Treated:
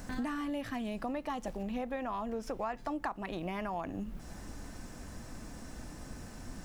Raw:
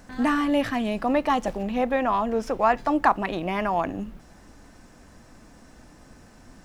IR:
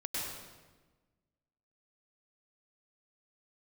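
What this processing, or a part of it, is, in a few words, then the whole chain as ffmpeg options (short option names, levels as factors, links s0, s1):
ASMR close-microphone chain: -af "lowshelf=f=210:g=5.5,acompressor=threshold=0.0158:ratio=6,highshelf=f=6200:g=7,volume=1.12"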